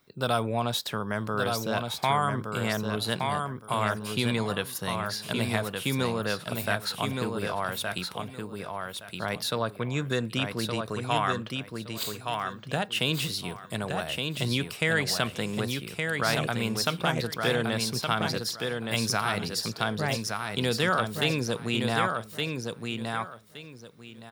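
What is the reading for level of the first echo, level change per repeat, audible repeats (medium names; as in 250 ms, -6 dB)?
-4.5 dB, -13.0 dB, 3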